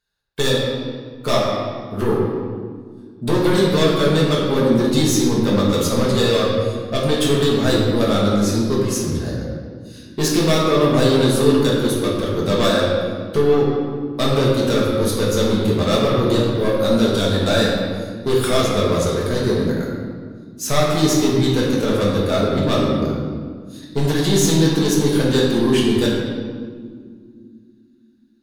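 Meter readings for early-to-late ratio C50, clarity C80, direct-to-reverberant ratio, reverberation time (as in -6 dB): 0.0 dB, 2.0 dB, -5.5 dB, no single decay rate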